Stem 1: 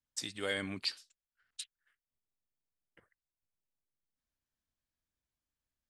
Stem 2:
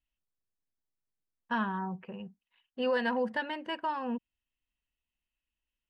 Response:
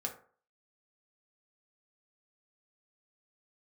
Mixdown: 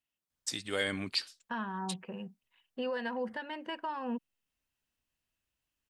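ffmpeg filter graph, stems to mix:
-filter_complex "[0:a]adelay=300,volume=3dB[a];[1:a]highpass=130,alimiter=level_in=4.5dB:limit=-24dB:level=0:latency=1:release=407,volume=-4.5dB,volume=1dB[b];[a][b]amix=inputs=2:normalize=0"

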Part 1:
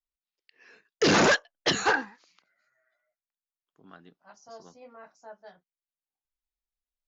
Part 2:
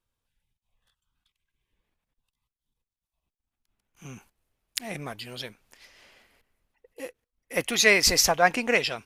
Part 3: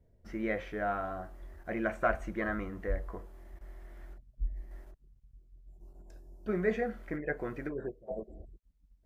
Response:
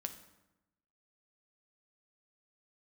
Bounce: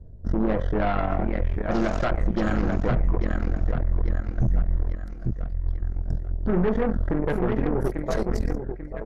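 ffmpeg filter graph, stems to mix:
-filter_complex "[0:a]adelay=700,volume=-18dB,asplit=2[a][b];[b]volume=-10dB[c];[1:a]acompressor=threshold=-23dB:ratio=6,adelay=300,volume=-5.5dB[d];[2:a]aemphasis=mode=reproduction:type=riaa,aeval=exprs='0.501*sin(PI/2*3.16*val(0)/0.501)':c=same,lowshelf=f=61:g=-6.5,volume=-1.5dB,asplit=3[e][f][g];[f]volume=-11dB[h];[g]apad=whole_len=412550[i];[d][i]sidechaingate=range=-29dB:threshold=-21dB:ratio=16:detection=peak[j];[j][e]amix=inputs=2:normalize=0,asuperstop=centerf=2400:order=4:qfactor=1.4,alimiter=limit=-12dB:level=0:latency=1:release=138,volume=0dB[k];[c][h]amix=inputs=2:normalize=0,aecho=0:1:841|1682|2523|3364|4205|5046:1|0.43|0.185|0.0795|0.0342|0.0147[l];[a][k][l]amix=inputs=3:normalize=0,aeval=exprs='0.355*(cos(1*acos(clip(val(0)/0.355,-1,1)))-cos(1*PI/2))+0.0562*(cos(2*acos(clip(val(0)/0.355,-1,1)))-cos(2*PI/2))+0.0447*(cos(6*acos(clip(val(0)/0.355,-1,1)))-cos(6*PI/2))+0.0126*(cos(7*acos(clip(val(0)/0.355,-1,1)))-cos(7*PI/2))':c=same,alimiter=limit=-14dB:level=0:latency=1:release=53"

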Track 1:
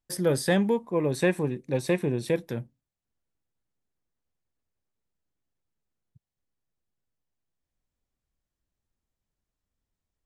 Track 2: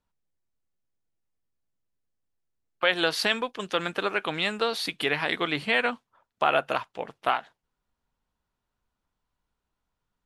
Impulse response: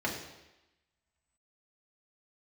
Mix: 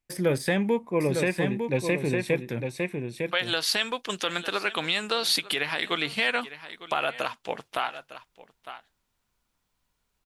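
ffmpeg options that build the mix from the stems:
-filter_complex "[0:a]deesser=0.65,equalizer=f=2.3k:w=2.7:g=10.5,volume=0.5dB,asplit=3[a][b][c];[b]volume=-6dB[d];[1:a]highshelf=f=2.7k:g=10,adelay=500,volume=1.5dB,asplit=2[e][f];[f]volume=-19.5dB[g];[c]apad=whole_len=474288[h];[e][h]sidechaincompress=threshold=-37dB:ratio=4:attack=34:release=1440[i];[d][g]amix=inputs=2:normalize=0,aecho=0:1:904:1[j];[a][i][j]amix=inputs=3:normalize=0,alimiter=limit=-13dB:level=0:latency=1:release=226"

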